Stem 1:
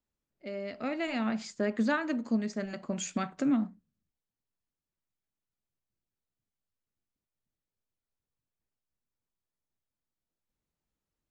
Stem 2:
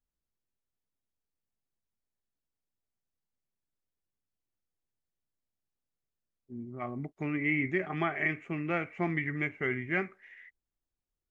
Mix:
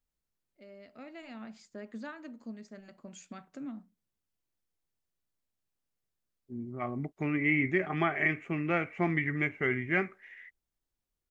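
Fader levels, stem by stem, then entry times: −14.0, +2.0 decibels; 0.15, 0.00 seconds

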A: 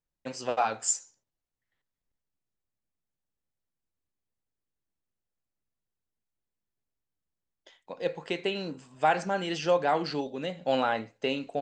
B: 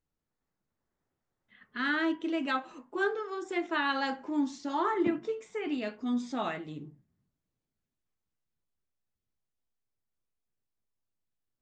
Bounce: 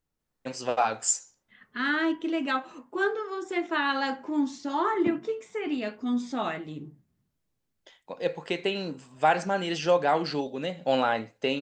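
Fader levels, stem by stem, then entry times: +2.0, +3.0 decibels; 0.20, 0.00 seconds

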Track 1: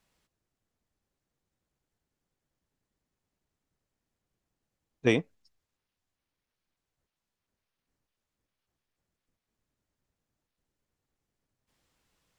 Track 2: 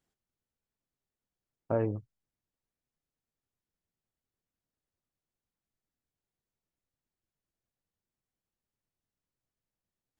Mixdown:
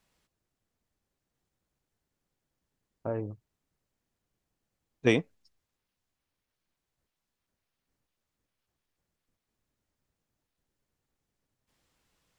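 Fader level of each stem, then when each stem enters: +0.5, −4.0 decibels; 0.00, 1.35 seconds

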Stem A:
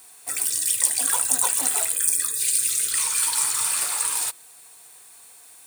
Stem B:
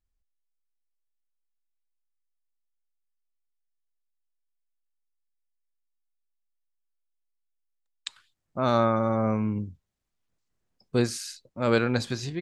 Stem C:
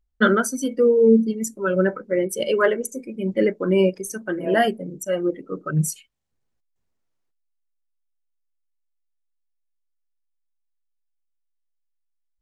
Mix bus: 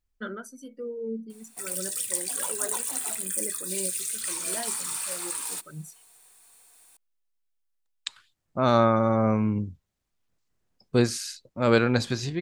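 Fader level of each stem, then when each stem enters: −8.5, +2.5, −19.0 decibels; 1.30, 0.00, 0.00 seconds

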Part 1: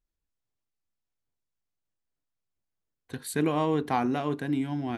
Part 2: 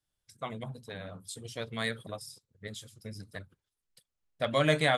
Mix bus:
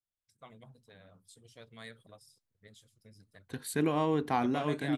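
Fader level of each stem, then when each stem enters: −3.0, −15.0 decibels; 0.40, 0.00 seconds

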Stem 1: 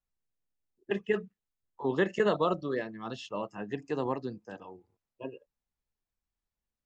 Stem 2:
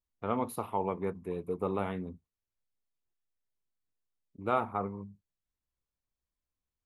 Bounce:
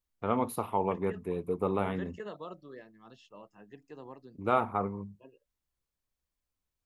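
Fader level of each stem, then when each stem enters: −15.5, +2.5 decibels; 0.00, 0.00 seconds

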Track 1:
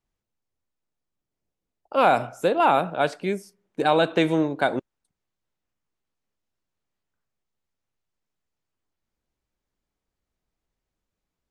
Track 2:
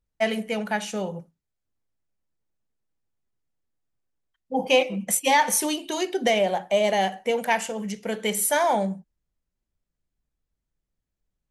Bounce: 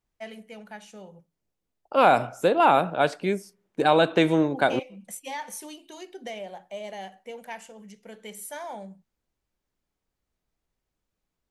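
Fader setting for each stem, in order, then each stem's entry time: +0.5, −15.5 decibels; 0.00, 0.00 seconds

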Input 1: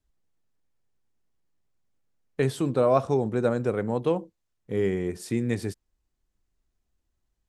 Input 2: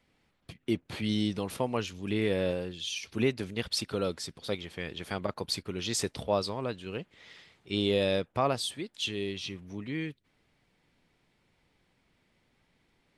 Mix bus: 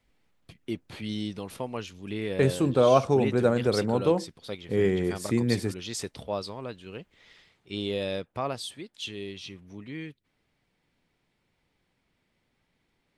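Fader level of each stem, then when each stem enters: +1.5, −3.5 decibels; 0.00, 0.00 seconds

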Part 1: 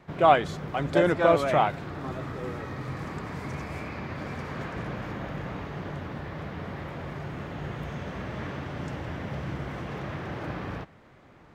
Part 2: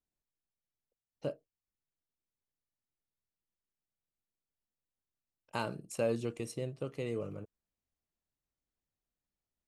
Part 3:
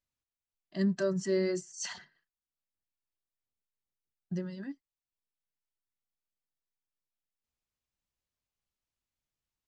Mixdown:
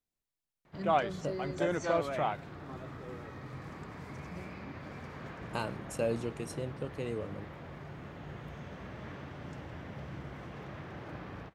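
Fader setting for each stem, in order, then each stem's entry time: −9.5, 0.0, −11.0 decibels; 0.65, 0.00, 0.00 seconds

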